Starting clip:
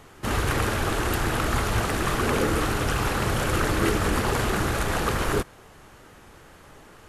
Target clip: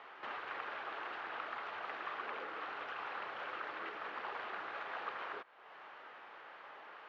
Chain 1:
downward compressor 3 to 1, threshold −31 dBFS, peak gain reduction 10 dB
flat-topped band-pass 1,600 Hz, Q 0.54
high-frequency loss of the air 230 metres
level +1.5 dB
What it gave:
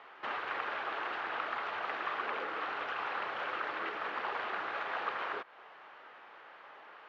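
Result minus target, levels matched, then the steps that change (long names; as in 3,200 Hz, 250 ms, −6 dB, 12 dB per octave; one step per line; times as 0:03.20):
downward compressor: peak gain reduction −6.5 dB
change: downward compressor 3 to 1, threshold −40.5 dBFS, peak gain reduction 16.5 dB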